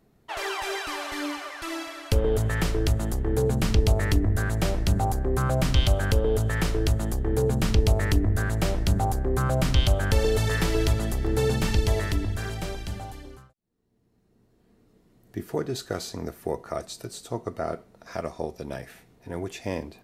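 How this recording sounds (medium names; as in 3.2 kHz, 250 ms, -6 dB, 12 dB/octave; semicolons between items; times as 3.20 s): noise floor -64 dBFS; spectral tilt -5.5 dB/octave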